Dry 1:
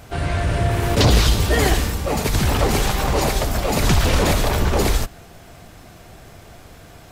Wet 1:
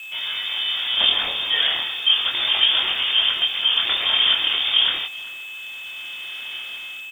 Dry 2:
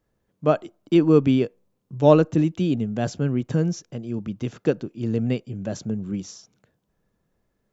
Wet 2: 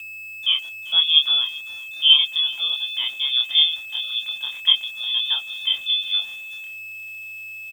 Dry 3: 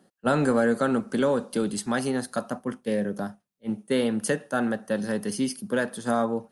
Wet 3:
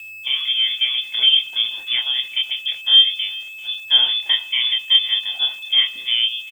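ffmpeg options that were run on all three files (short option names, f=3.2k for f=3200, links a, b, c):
-filter_complex "[0:a]highpass=150,equalizer=f=530:t=o:w=0.26:g=12.5,dynaudnorm=f=550:g=3:m=14dB,flanger=delay=22.5:depth=4.3:speed=0.36,aeval=exprs='val(0)+0.0251*sin(2*PI*1100*n/s)':c=same,lowpass=f=3.1k:t=q:w=0.5098,lowpass=f=3.1k:t=q:w=0.6013,lowpass=f=3.1k:t=q:w=0.9,lowpass=f=3.1k:t=q:w=2.563,afreqshift=-3700,asplit=2[a][b];[b]adelay=390.7,volume=-18dB,highshelf=f=4k:g=-8.79[c];[a][c]amix=inputs=2:normalize=0,aeval=exprs='val(0)*gte(abs(val(0)),0.00944)':c=same,volume=-1dB"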